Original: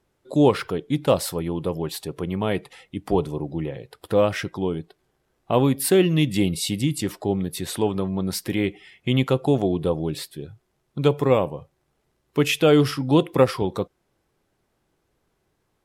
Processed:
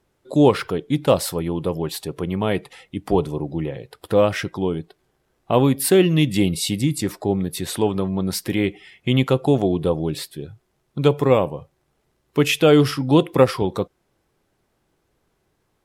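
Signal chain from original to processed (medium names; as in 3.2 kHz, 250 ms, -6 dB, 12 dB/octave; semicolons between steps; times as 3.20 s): 6.77–7.47 s: peaking EQ 3 kHz -8 dB 0.24 oct; trim +2.5 dB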